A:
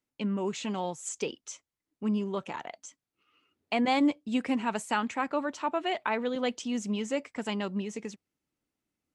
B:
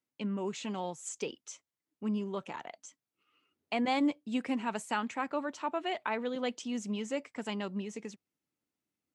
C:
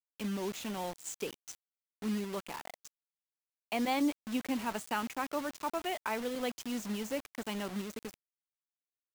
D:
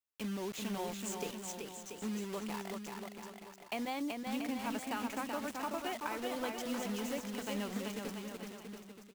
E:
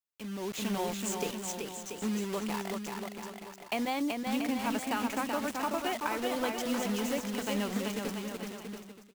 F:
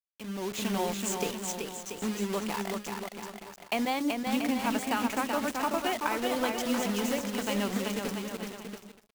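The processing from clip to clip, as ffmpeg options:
-af "highpass=90,volume=-4dB"
-af "acrusher=bits=6:mix=0:aa=0.000001,volume=-1.5dB"
-af "acompressor=threshold=-34dB:ratio=6,aecho=1:1:380|684|927.2|1122|1277:0.631|0.398|0.251|0.158|0.1,volume=-1dB"
-af "dynaudnorm=f=120:g=7:m=9.5dB,volume=-3.5dB"
-af "bandreject=f=69.95:t=h:w=4,bandreject=f=139.9:t=h:w=4,bandreject=f=209.85:t=h:w=4,bandreject=f=279.8:t=h:w=4,bandreject=f=349.75:t=h:w=4,bandreject=f=419.7:t=h:w=4,bandreject=f=489.65:t=h:w=4,bandreject=f=559.6:t=h:w=4,aeval=exprs='sgn(val(0))*max(abs(val(0))-0.00224,0)':c=same,volume=3.5dB"

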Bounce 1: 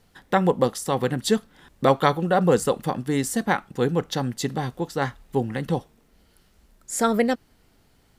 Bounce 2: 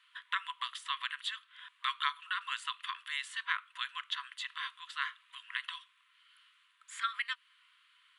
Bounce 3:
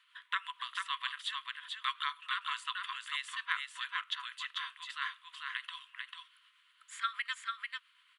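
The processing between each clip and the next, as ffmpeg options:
-filter_complex "[0:a]acrossover=split=1700|7000[a][b][c];[a]acompressor=threshold=-29dB:ratio=4[d];[b]acompressor=threshold=-37dB:ratio=4[e];[c]acompressor=threshold=-47dB:ratio=4[f];[d][e][f]amix=inputs=3:normalize=0,afftfilt=real='re*between(b*sr/4096,970,11000)':imag='im*between(b*sr/4096,970,11000)':win_size=4096:overlap=0.75,highshelf=f=4.2k:t=q:w=3:g=-9.5"
-af "tremolo=f=8.5:d=0.38,aecho=1:1:443:0.631"

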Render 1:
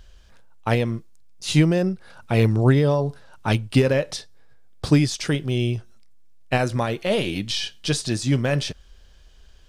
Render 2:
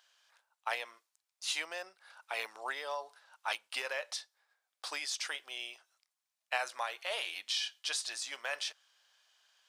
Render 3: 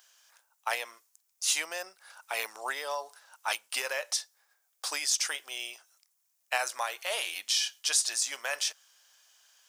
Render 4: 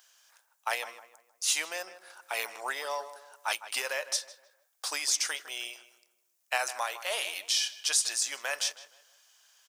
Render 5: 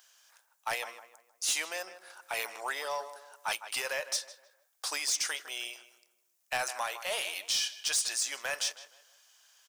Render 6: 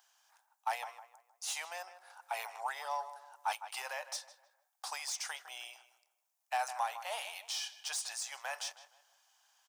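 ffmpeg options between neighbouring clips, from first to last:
-af "highpass=f=780:w=0.5412,highpass=f=780:w=1.3066,volume=-7.5dB"
-af "aexciter=amount=3.7:drive=2.5:freq=5.5k,volume=4dB"
-filter_complex "[0:a]asplit=2[a][b];[b]adelay=156,lowpass=f=2.1k:p=1,volume=-12.5dB,asplit=2[c][d];[d]adelay=156,lowpass=f=2.1k:p=1,volume=0.4,asplit=2[e][f];[f]adelay=156,lowpass=f=2.1k:p=1,volume=0.4,asplit=2[g][h];[h]adelay=156,lowpass=f=2.1k:p=1,volume=0.4[i];[a][c][e][g][i]amix=inputs=5:normalize=0"
-af "asoftclip=type=tanh:threshold=-22.5dB"
-af "highpass=f=800:t=q:w=4.6,volume=-9dB"

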